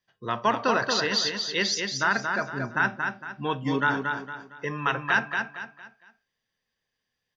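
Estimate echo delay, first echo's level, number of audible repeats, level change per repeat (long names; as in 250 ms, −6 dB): 229 ms, −5.0 dB, 4, −9.0 dB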